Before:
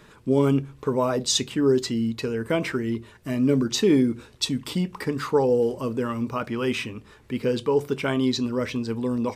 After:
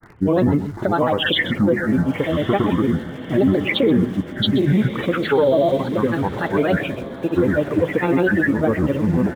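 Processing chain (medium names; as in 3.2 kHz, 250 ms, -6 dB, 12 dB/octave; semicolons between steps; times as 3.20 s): knee-point frequency compression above 1.8 kHz 4:1; in parallel at -9.5 dB: bit crusher 7-bit; on the sum: granulator, pitch spread up and down by 7 st; peaking EQ 2.6 kHz -10 dB 0.64 oct; delay 129 ms -15.5 dB; peak limiter -14.5 dBFS, peak gain reduction 7 dB; on a send: echo that smears into a reverb 1166 ms, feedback 44%, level -13.5 dB; on the sum: trim +6 dB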